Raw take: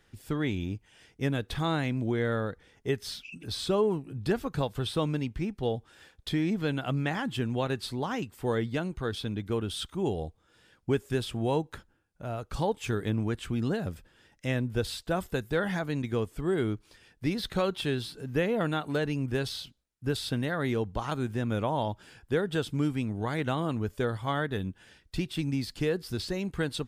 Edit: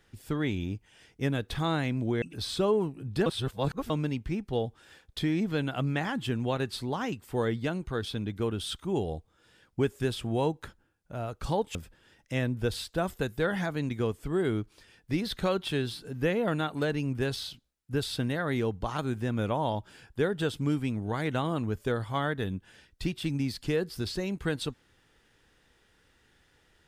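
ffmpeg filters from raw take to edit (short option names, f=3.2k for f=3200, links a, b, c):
-filter_complex "[0:a]asplit=5[a][b][c][d][e];[a]atrim=end=2.222[f];[b]atrim=start=3.318:end=4.362[g];[c]atrim=start=4.358:end=5.002,asetpts=PTS-STARTPTS,areverse[h];[d]atrim=start=4.998:end=12.852[i];[e]atrim=start=13.878[j];[f][g]acrossfade=d=0.004:c1=hsin:c2=hsin[k];[k][h]acrossfade=d=0.004:c1=hsin:c2=hsin[l];[l][i]acrossfade=d=0.004:c1=hsin:c2=hsin[m];[m][j]acrossfade=d=0.004:c1=hsin:c2=hsin"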